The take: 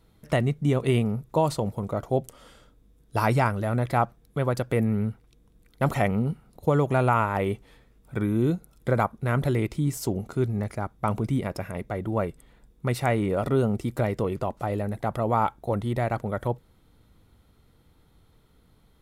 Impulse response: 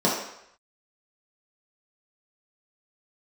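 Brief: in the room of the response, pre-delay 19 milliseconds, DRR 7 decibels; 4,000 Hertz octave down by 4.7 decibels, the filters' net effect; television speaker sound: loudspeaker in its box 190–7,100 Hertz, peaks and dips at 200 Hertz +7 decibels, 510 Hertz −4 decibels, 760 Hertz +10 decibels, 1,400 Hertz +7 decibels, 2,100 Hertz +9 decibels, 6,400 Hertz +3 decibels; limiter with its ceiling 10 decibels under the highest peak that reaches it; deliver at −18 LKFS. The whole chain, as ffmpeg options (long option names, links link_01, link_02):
-filter_complex "[0:a]equalizer=frequency=4000:width_type=o:gain=-8,alimiter=limit=-19.5dB:level=0:latency=1,asplit=2[link_01][link_02];[1:a]atrim=start_sample=2205,adelay=19[link_03];[link_02][link_03]afir=irnorm=-1:irlink=0,volume=-23.5dB[link_04];[link_01][link_04]amix=inputs=2:normalize=0,highpass=frequency=190:width=0.5412,highpass=frequency=190:width=1.3066,equalizer=frequency=200:width_type=q:width=4:gain=7,equalizer=frequency=510:width_type=q:width=4:gain=-4,equalizer=frequency=760:width_type=q:width=4:gain=10,equalizer=frequency=1400:width_type=q:width=4:gain=7,equalizer=frequency=2100:width_type=q:width=4:gain=9,equalizer=frequency=6400:width_type=q:width=4:gain=3,lowpass=frequency=7100:width=0.5412,lowpass=frequency=7100:width=1.3066,volume=9dB"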